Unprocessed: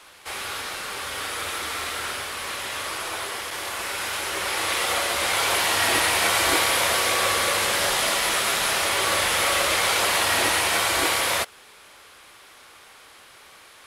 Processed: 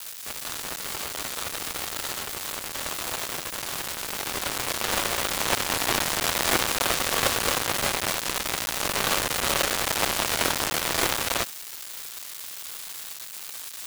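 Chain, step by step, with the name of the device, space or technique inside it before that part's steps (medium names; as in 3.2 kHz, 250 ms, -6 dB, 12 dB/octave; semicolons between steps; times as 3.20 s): budget class-D amplifier (dead-time distortion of 0.28 ms; zero-crossing glitches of -23.5 dBFS); trim +6 dB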